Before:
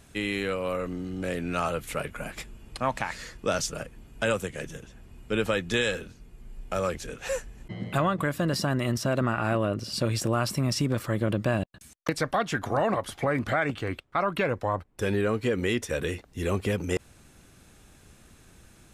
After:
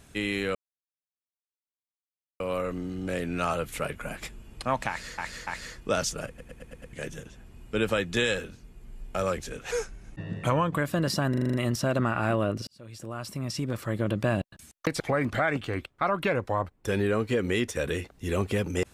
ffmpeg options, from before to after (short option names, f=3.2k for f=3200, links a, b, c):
-filter_complex "[0:a]asplit=20[a][b][c][d][e][f][g][h][i][j][k][l][m][n][o][p][q][r][s][t];[a]atrim=end=0.55,asetpts=PTS-STARTPTS,afade=t=out:st=0.546:d=0.004:c=hsin,apad=pad_dur=1.85[u];[b]atrim=start=0.55:end=3.332,asetpts=PTS-STARTPTS,afade=t=in:d=0.004:c=hsin[v];[c]atrim=start=3.038:end=3.332[w];[d]atrim=start=3.038:end=3.952[x];[e]atrim=start=3.838:end=3.952[y];[f]atrim=start=3.838:end=3.952[z];[g]atrim=start=3.838:end=3.952[aa];[h]atrim=start=3.838:end=3.952[ab];[i]atrim=start=3.838:end=3.952[ac];[j]atrim=start=4.498:end=7.284[ad];[k]atrim=start=7.28:end=8.18,asetpts=PTS-STARTPTS,asetrate=39249,aresample=44100[ae];[l]atrim=start=8.176:end=8.802[af];[m]atrim=start=8.758:end=8.802[ag];[n]atrim=start=8.758:end=8.802[ah];[o]atrim=start=8.758:end=8.802[ai];[p]atrim=start=8.758:end=8.802[aj];[q]atrim=start=8.758:end=8.802[ak];[r]atrim=start=8.758:end=9.89,asetpts=PTS-STARTPTS,afade=t=out:st=1.128:d=0.004:c=hsin[al];[s]atrim=start=9.89:end=12.222,asetpts=PTS-STARTPTS,afade=t=in:d=1.63[am];[t]atrim=start=13.138[an];[u][v]concat=n=2:v=0:a=1[ao];[ao][w]acrossfade=d=0.004:c1=hsin:c2=hsin[ap];[ap][x]acrossfade=d=0.004:c1=hsin:c2=hsin[aq];[aq][y]acrossfade=d=0.004:c1=hsin:c2=hsin[ar];[ar][z]acrossfade=d=0.004:c1=hsin:c2=hsin[as];[as][aa]acrossfade=d=0.004:c1=hsin:c2=hsin[at];[at][ab]acrossfade=d=0.004:c1=hsin:c2=hsin[au];[au][ac]acrossfade=d=0.004:c1=hsin:c2=hsin[av];[av][ad]acrossfade=d=0.004:c1=hsin:c2=hsin[aw];[aw][ae]acrossfade=d=0.004:c1=hsin:c2=hsin[ax];[ax][af]acrossfade=d=0.004:c1=hsin:c2=hsin[ay];[ay][ag]acrossfade=d=0.004:c1=hsin:c2=hsin[az];[az][ah]acrossfade=d=0.004:c1=hsin:c2=hsin[ba];[ba][ai]acrossfade=d=0.004:c1=hsin:c2=hsin[bb];[bb][aj]acrossfade=d=0.004:c1=hsin:c2=hsin[bc];[bc][ak]acrossfade=d=0.004:c1=hsin:c2=hsin[bd];[al][am]concat=n=2:v=0:a=1[be];[bd][be]acrossfade=d=0.004:c1=hsin:c2=hsin[bf];[bf][an]acrossfade=d=0.004:c1=hsin:c2=hsin"